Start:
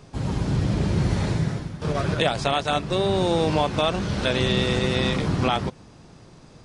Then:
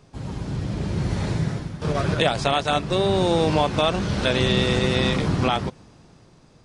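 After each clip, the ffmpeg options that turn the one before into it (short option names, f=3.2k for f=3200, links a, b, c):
-af "dynaudnorm=f=350:g=7:m=11.5dB,volume=-5.5dB"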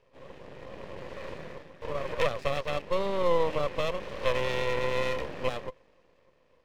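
-filter_complex "[0:a]asplit=3[a][b][c];[a]bandpass=f=530:t=q:w=8,volume=0dB[d];[b]bandpass=f=1.84k:t=q:w=8,volume=-6dB[e];[c]bandpass=f=2.48k:t=q:w=8,volume=-9dB[f];[d][e][f]amix=inputs=3:normalize=0,aeval=exprs='max(val(0),0)':c=same,volume=6dB"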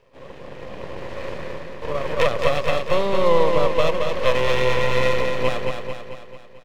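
-af "aecho=1:1:221|442|663|884|1105|1326|1547:0.562|0.304|0.164|0.0885|0.0478|0.0258|0.0139,volume=7.5dB"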